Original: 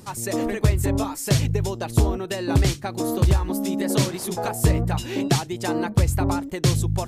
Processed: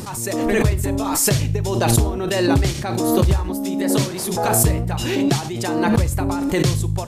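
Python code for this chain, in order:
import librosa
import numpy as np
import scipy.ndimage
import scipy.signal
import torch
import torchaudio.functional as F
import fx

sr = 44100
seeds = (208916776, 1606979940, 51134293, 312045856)

y = fx.rev_schroeder(x, sr, rt60_s=0.39, comb_ms=29, drr_db=14.5)
y = fx.pre_swell(y, sr, db_per_s=28.0)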